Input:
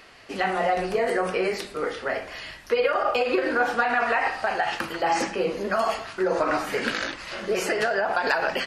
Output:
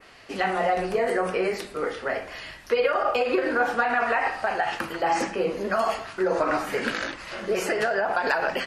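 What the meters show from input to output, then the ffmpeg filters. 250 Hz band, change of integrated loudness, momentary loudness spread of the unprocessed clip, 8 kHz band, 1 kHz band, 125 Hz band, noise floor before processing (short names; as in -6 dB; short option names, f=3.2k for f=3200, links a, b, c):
0.0 dB, -0.5 dB, 7 LU, -2.0 dB, 0.0 dB, 0.0 dB, -44 dBFS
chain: -af "adynamicequalizer=threshold=0.00708:dfrequency=4300:dqfactor=0.81:tfrequency=4300:tqfactor=0.81:attack=5:release=100:ratio=0.375:range=2:mode=cutabove:tftype=bell"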